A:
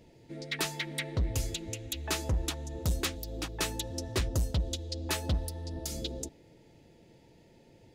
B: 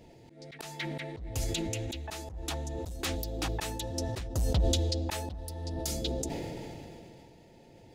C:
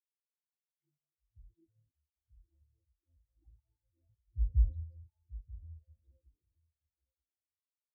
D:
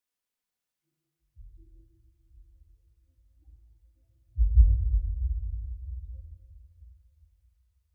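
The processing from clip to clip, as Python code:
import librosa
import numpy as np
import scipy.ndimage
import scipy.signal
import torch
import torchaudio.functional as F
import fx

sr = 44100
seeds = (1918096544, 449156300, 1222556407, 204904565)

y1 = fx.peak_eq(x, sr, hz=760.0, db=6.0, octaves=0.42)
y1 = fx.auto_swell(y1, sr, attack_ms=346.0)
y1 = fx.sustainer(y1, sr, db_per_s=20.0)
y1 = y1 * 10.0 ** (2.0 / 20.0)
y2 = fx.echo_feedback(y1, sr, ms=935, feedback_pct=35, wet_db=-5.5)
y2 = fx.spectral_expand(y2, sr, expansion=4.0)
y2 = y2 * 10.0 ** (-1.5 / 20.0)
y3 = fx.room_shoebox(y2, sr, seeds[0], volume_m3=3300.0, walls='mixed', distance_m=1.9)
y3 = y3 * 10.0 ** (6.0 / 20.0)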